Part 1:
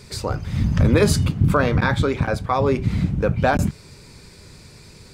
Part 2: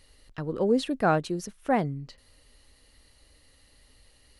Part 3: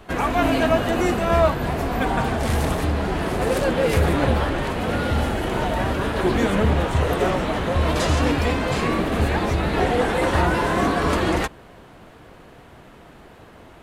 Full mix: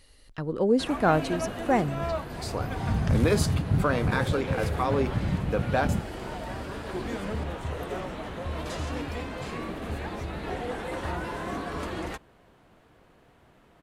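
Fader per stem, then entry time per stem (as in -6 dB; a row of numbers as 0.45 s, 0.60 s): -7.0 dB, +1.0 dB, -13.0 dB; 2.30 s, 0.00 s, 0.70 s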